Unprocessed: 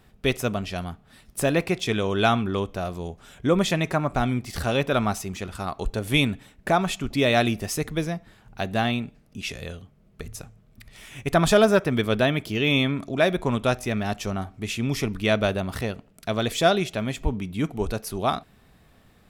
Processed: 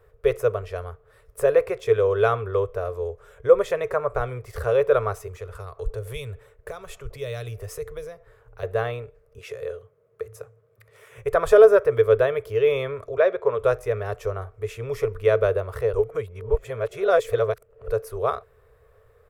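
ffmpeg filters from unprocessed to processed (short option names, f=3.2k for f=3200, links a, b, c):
-filter_complex "[0:a]asettb=1/sr,asplit=3[a][b][c];[a]atrim=end=5.274[d];[b]atrim=start=5.27:end=8.63,asetpts=PTS-STARTPTS,afade=t=in:d=0.004:c=qsin,afade=t=out:st=3.356:d=0.004:c=qsin,acrossover=split=170|3000[e][f][g];[f]acompressor=threshold=-37dB:ratio=4:attack=3.2:release=140:knee=2.83:detection=peak[h];[e][h][g]amix=inputs=3:normalize=0[i];[c]atrim=start=8.626[j];[d][i]acrossfade=d=0.004:c1=hsin:c2=qsin[k];[k][j]acrossfade=d=0.004:c1=qsin:c2=hsin,asettb=1/sr,asplit=3[l][m][n];[l]atrim=end=9.384[o];[m]atrim=start=9.38:end=11.18,asetpts=PTS-STARTPTS,afade=t=in:d=0.004:c=qsin,afade=t=out:st=1.796:d=0.004:c=qsin,highpass=f=110:w=0.5412,highpass=f=110:w=1.3066[p];[n]atrim=start=11.176[q];[o][p]acrossfade=d=0.004:c1=hsin:c2=qsin[r];[r][q]acrossfade=d=0.004:c1=qsin:c2=hsin,asettb=1/sr,asplit=3[s][t][u];[s]atrim=end=13.174[v];[t]atrim=start=13.17:end=13.59,asetpts=PTS-STARTPTS,afade=t=in:d=0.004:c=qsin,afade=t=out:st=0.416:d=0.004:c=qsin,highpass=190,lowpass=4.6k[w];[u]atrim=start=13.586[x];[v][w]acrossfade=d=0.004:c1=hsin:c2=qsin[y];[y][x]acrossfade=d=0.004:c1=qsin:c2=hsin,asplit=3[z][aa][ab];[z]atrim=end=15.932[ac];[aa]atrim=start=15.928:end=17.882,asetpts=PTS-STARTPTS,areverse[ad];[ab]atrim=start=17.878[ae];[ac][ad]acrossfade=d=0.004:c1=hsin:c2=hsin[af];[af][ae]acrossfade=d=0.004:c1=hsin:c2=hsin,firequalizer=gain_entry='entry(110,0);entry(170,-23);entry(300,-24);entry(440,13);entry(770,-8);entry(1100,2);entry(2900,-13);entry(4200,-15);entry(7500,-11);entry(14000,-6)':delay=0.05:min_phase=1"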